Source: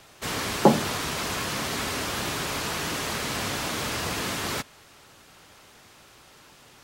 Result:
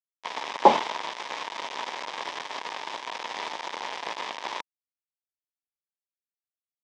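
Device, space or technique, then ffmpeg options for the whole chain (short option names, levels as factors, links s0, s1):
hand-held game console: -af "acrusher=bits=3:mix=0:aa=0.000001,highpass=470,equalizer=f=940:t=q:w=4:g=10,equalizer=f=1400:t=q:w=4:g=-8,equalizer=f=2700:t=q:w=4:g=-4,equalizer=f=4300:t=q:w=4:g=-7,lowpass=f=4500:w=0.5412,lowpass=f=4500:w=1.3066,volume=1.19"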